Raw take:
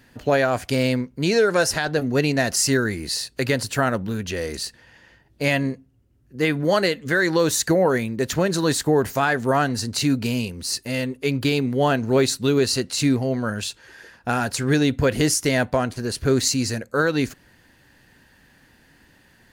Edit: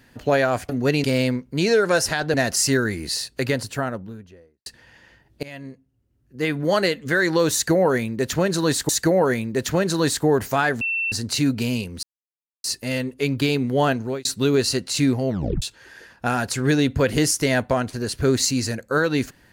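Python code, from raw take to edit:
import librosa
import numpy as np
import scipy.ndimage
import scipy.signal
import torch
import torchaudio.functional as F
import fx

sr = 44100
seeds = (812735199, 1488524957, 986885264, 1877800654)

y = fx.studio_fade_out(x, sr, start_s=3.25, length_s=1.41)
y = fx.edit(y, sr, fx.move(start_s=1.99, length_s=0.35, to_s=0.69),
    fx.fade_in_from(start_s=5.43, length_s=1.42, floor_db=-22.5),
    fx.repeat(start_s=7.53, length_s=1.36, count=2),
    fx.bleep(start_s=9.45, length_s=0.31, hz=2690.0, db=-21.0),
    fx.insert_silence(at_s=10.67, length_s=0.61),
    fx.fade_out_span(start_s=11.94, length_s=0.34),
    fx.tape_stop(start_s=13.32, length_s=0.33), tone=tone)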